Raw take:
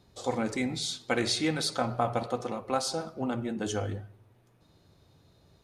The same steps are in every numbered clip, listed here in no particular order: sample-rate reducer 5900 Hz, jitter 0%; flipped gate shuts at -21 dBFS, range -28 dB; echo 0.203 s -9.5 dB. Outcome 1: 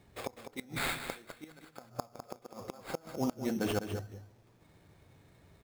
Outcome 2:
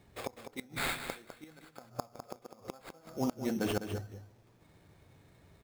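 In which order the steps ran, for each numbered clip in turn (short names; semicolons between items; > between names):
sample-rate reducer > flipped gate > echo; flipped gate > sample-rate reducer > echo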